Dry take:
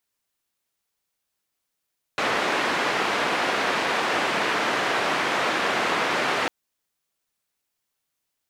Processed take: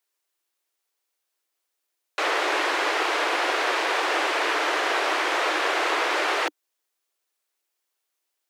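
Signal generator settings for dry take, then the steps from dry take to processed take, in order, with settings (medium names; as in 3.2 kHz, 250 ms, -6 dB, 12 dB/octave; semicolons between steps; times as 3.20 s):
noise band 260–1900 Hz, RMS -24 dBFS 4.30 s
steep high-pass 300 Hz 96 dB/octave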